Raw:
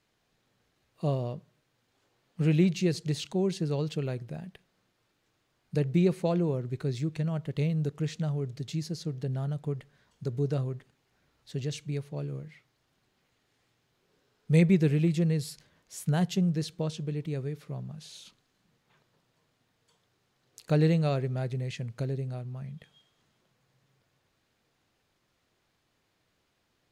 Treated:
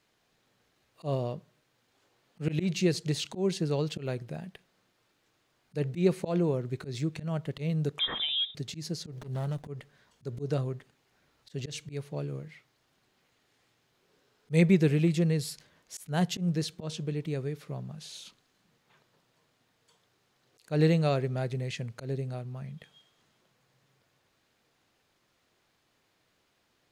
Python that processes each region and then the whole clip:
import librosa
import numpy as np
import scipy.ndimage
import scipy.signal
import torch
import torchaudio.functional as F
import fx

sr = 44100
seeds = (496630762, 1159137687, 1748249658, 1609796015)

y = fx.chain(x, sr, fx.low_shelf_res(hz=350.0, db=-9.5, q=3.0),
    fx.freq_invert(carrier_hz=3700),
    fx.pre_swell(db_per_s=42.0), at=(7.99, 8.55))
y = fx.chain(y, sr, fx.high_shelf(hz=4500.0, db=8.5),
    fx.running_max(window=17), at=(9.12, 9.66))
y = fx.low_shelf(y, sr, hz=170.0, db=-6.5)
y = fx.auto_swell(y, sr, attack_ms=113.0)
y = y * librosa.db_to_amplitude(3.0)